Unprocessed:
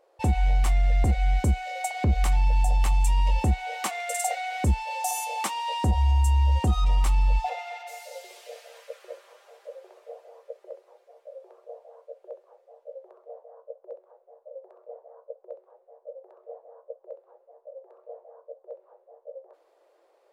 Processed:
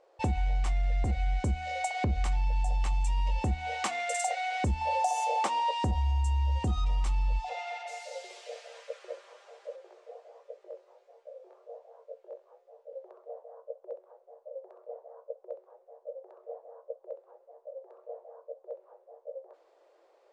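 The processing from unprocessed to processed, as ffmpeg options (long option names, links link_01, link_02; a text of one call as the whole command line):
ffmpeg -i in.wav -filter_complex "[0:a]asettb=1/sr,asplit=3[link_01][link_02][link_03];[link_01]atrim=end=4.814[link_04];[link_02]atrim=start=4.81:end=5.71,asetpts=PTS-STARTPTS,afade=type=in:duration=0.004:curve=qsin,afade=type=out:start_time=0.896:duration=0.004:curve=qsin,equalizer=frequency=560:width=0.81:gain=11.5[link_05];[link_03]atrim=start=5.706[link_06];[link_04][link_05]acrossfade=duration=0.004:curve1=hsin:curve2=qsin[link_07];[link_07][link_06]acrossfade=duration=0.004:curve1=qsin:curve2=hsin,asettb=1/sr,asplit=3[link_08][link_09][link_10];[link_08]atrim=end=6.634[link_11];[link_09]atrim=start=6.63:end=7.86,asetpts=PTS-STARTPTS,afade=type=in:duration=0.004:curve=qsin,afade=type=out:start_time=1.226:duration=0.004:curve=qsin,acrossover=split=440|3000[link_12][link_13][link_14];[link_13]acompressor=threshold=-33dB:ratio=6:attack=3.2:release=140:knee=2.83:detection=peak[link_15];[link_12][link_15][link_14]amix=inputs=3:normalize=0[link_16];[link_10]atrim=start=7.856[link_17];[link_11][link_16]acrossfade=duration=0.004:curve1=hsin:curve2=qsin[link_18];[link_18][link_17]acrossfade=duration=0.004:curve1=qsin:curve2=hsin,asettb=1/sr,asplit=3[link_19][link_20][link_21];[link_19]atrim=end=9.764[link_22];[link_20]atrim=start=9.76:end=12.93,asetpts=PTS-STARTPTS,afade=type=in:duration=0.004:curve=qsin,afade=type=out:start_time=3.166:duration=0.004:curve=qsin,flanger=delay=15.5:depth=7:speed=1.4[link_23];[link_21]atrim=start=12.926[link_24];[link_22][link_23]acrossfade=duration=0.004:curve1=hsin:curve2=qsin[link_25];[link_25][link_24]acrossfade=duration=0.004:curve1=qsin:curve2=hsin,lowpass=frequency=7900:width=0.5412,lowpass=frequency=7900:width=1.3066,bandreject=frequency=78.74:width_type=h:width=4,bandreject=frequency=157.48:width_type=h:width=4,bandreject=frequency=236.22:width_type=h:width=4,bandreject=frequency=314.96:width_type=h:width=4,acompressor=threshold=-27dB:ratio=3" out.wav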